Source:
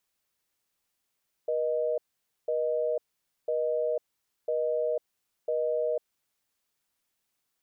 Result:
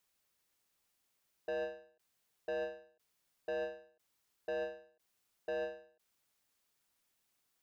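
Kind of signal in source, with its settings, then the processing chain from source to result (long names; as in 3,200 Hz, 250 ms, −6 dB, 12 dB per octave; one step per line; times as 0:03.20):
call progress tone busy tone, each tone −28 dBFS 4.55 s
soft clipping −34.5 dBFS
every ending faded ahead of time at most 120 dB per second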